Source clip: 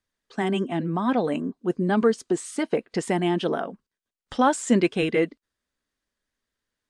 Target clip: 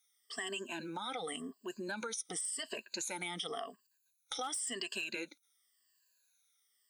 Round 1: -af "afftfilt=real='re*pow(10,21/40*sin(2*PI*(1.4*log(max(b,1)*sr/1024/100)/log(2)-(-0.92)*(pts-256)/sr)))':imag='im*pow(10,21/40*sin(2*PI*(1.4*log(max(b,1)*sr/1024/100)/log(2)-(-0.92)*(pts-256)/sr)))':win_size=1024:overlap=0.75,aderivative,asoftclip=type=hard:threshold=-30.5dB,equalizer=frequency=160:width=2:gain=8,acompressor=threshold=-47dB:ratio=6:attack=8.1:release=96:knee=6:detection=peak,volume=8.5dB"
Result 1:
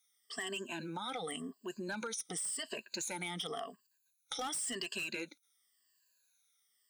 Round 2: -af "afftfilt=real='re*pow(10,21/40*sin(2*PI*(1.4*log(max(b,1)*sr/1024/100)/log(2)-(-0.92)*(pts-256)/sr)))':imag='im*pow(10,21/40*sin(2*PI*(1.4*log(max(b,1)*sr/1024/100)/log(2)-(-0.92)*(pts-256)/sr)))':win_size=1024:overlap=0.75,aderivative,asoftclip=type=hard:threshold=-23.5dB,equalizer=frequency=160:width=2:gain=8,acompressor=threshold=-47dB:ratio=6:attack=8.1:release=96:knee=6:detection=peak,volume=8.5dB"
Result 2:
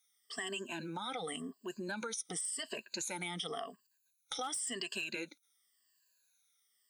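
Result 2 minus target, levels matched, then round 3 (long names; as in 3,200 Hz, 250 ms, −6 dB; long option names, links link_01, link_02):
125 Hz band +4.0 dB
-af "afftfilt=real='re*pow(10,21/40*sin(2*PI*(1.4*log(max(b,1)*sr/1024/100)/log(2)-(-0.92)*(pts-256)/sr)))':imag='im*pow(10,21/40*sin(2*PI*(1.4*log(max(b,1)*sr/1024/100)/log(2)-(-0.92)*(pts-256)/sr)))':win_size=1024:overlap=0.75,aderivative,asoftclip=type=hard:threshold=-23.5dB,equalizer=frequency=160:width=2:gain=2,acompressor=threshold=-47dB:ratio=6:attack=8.1:release=96:knee=6:detection=peak,volume=8.5dB"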